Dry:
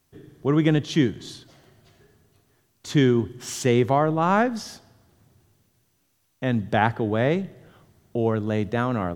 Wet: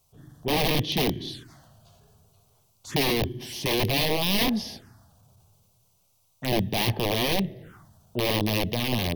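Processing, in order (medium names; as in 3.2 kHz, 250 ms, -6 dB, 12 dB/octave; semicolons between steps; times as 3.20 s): transient shaper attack -7 dB, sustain +2 dB; integer overflow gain 19 dB; touch-sensitive phaser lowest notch 290 Hz, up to 1.4 kHz, full sweep at -31 dBFS; trim +3.5 dB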